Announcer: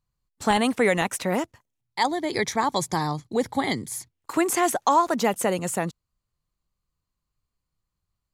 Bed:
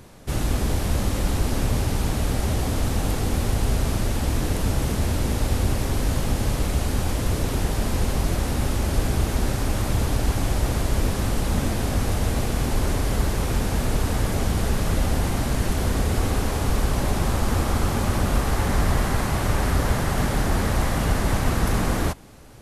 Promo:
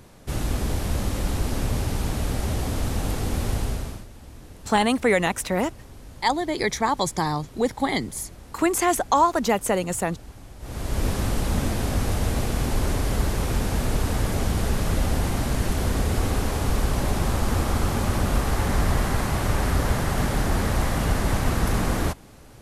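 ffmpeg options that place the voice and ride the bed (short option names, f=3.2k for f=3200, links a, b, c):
-filter_complex "[0:a]adelay=4250,volume=1dB[a];[1:a]volume=17dB,afade=t=out:st=3.55:d=0.51:silence=0.125893,afade=t=in:st=10.59:d=0.5:silence=0.105925[b];[a][b]amix=inputs=2:normalize=0"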